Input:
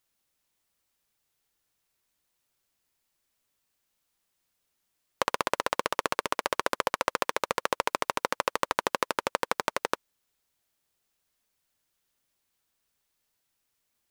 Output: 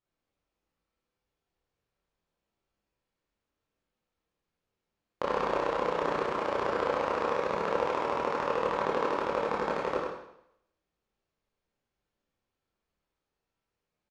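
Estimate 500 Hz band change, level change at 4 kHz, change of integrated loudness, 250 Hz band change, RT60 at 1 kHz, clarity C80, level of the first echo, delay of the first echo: +4.0 dB, -8.5 dB, -0.5 dB, +3.5 dB, 0.75 s, 1.5 dB, -4.5 dB, 0.101 s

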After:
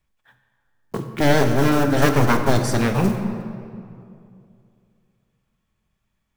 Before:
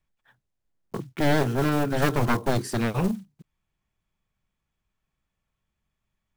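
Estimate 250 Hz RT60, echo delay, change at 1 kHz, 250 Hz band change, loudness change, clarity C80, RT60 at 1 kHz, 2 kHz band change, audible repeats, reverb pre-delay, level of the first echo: 2.7 s, none, +6.0 dB, +6.0 dB, +5.5 dB, 8.0 dB, 2.4 s, +6.0 dB, none, 3 ms, none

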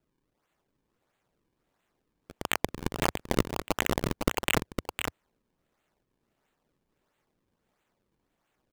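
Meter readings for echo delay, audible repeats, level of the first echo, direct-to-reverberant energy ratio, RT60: 0.508 s, 1, -6.0 dB, none, none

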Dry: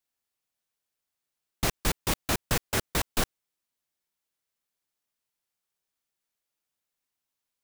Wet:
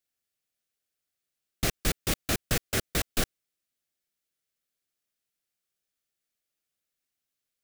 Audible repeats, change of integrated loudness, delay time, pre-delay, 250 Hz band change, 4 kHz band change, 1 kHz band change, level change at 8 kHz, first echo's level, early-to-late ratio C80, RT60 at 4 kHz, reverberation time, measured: none, -0.5 dB, none, none, 0.0 dB, 0.0 dB, -5.0 dB, 0.0 dB, none, none, none, none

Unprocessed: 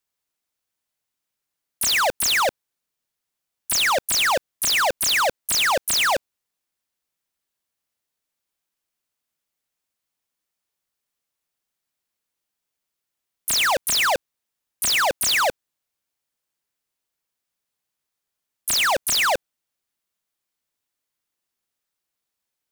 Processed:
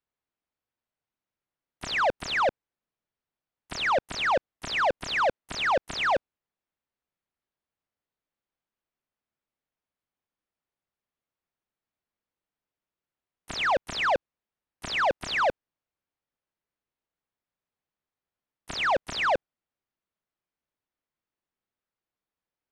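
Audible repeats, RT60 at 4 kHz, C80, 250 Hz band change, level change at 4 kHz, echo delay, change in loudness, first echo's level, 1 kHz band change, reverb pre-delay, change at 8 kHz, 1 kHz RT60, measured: none, none, none, -1.0 dB, -11.5 dB, none, -7.0 dB, none, -3.0 dB, none, -21.5 dB, none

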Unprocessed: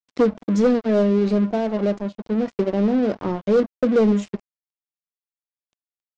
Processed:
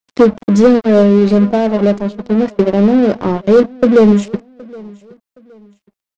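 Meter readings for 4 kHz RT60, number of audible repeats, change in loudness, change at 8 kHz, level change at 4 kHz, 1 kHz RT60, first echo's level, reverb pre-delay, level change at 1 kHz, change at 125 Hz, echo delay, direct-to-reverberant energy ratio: none, 2, +9.0 dB, n/a, +9.0 dB, none, -23.5 dB, none, +9.0 dB, +9.0 dB, 0.769 s, none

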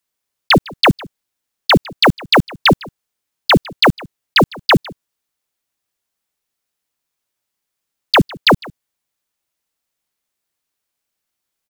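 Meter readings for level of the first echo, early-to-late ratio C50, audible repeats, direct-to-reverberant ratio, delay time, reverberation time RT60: -22.5 dB, none, 1, none, 0.155 s, none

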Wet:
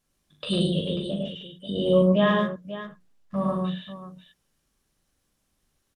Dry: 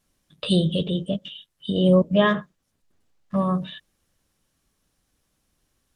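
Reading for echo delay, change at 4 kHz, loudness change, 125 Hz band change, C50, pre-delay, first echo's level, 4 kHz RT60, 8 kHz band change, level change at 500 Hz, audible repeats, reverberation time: 40 ms, -2.0 dB, -2.5 dB, -3.0 dB, none, none, -6.0 dB, none, n/a, -0.5 dB, 4, none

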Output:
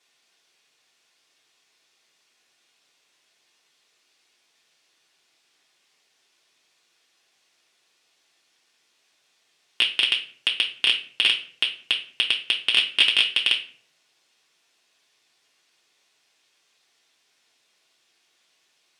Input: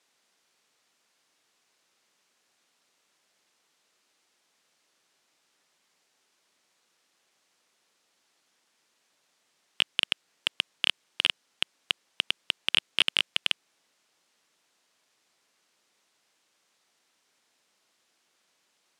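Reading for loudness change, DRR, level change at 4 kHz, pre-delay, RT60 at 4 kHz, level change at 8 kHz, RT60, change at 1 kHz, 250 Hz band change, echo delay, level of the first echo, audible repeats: +7.0 dB, -2.5 dB, +7.0 dB, 3 ms, 0.35 s, +2.5 dB, 0.55 s, +1.5 dB, +1.0 dB, none, none, none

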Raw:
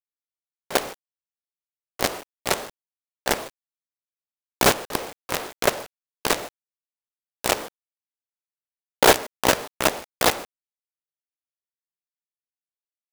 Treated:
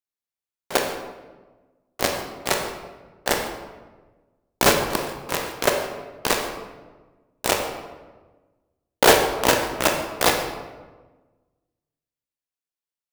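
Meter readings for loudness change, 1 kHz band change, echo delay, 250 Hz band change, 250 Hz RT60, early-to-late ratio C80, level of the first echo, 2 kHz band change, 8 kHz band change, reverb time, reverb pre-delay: +1.0 dB, +1.5 dB, none, +2.0 dB, 1.6 s, 8.0 dB, none, +1.5 dB, +1.0 dB, 1.3 s, 18 ms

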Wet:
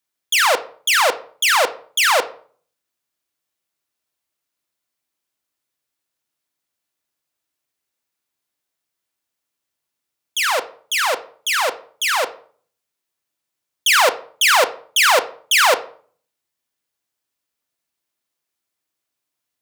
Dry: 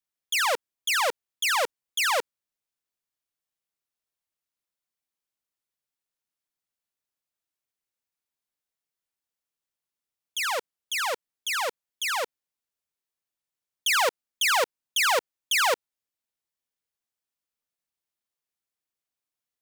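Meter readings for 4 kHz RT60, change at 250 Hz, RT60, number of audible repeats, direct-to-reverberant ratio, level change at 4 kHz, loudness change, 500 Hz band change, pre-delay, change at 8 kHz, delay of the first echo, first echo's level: 0.35 s, +10.5 dB, 0.50 s, none, 8.5 dB, +9.0 dB, +9.0 dB, +9.0 dB, 3 ms, +8.5 dB, none, none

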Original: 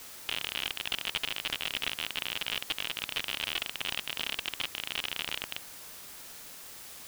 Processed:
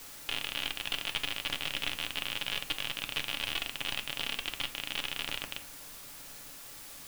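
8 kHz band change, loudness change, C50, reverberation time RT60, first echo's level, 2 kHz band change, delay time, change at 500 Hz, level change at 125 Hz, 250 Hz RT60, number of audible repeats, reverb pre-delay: -1.0 dB, -1.0 dB, 15.0 dB, 0.45 s, none, -0.5 dB, none, -0.5 dB, +3.0 dB, 0.55 s, none, 3 ms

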